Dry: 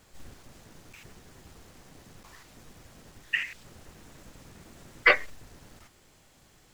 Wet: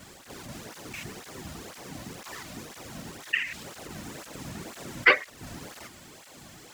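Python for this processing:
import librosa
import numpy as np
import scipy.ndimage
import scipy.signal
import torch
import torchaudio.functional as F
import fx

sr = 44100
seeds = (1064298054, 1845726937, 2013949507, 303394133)

p1 = fx.over_compress(x, sr, threshold_db=-49.0, ratio=-1.0)
p2 = x + F.gain(torch.from_numpy(p1), -1.5).numpy()
p3 = fx.flanger_cancel(p2, sr, hz=2.0, depth_ms=2.6)
y = F.gain(torch.from_numpy(p3), 4.5).numpy()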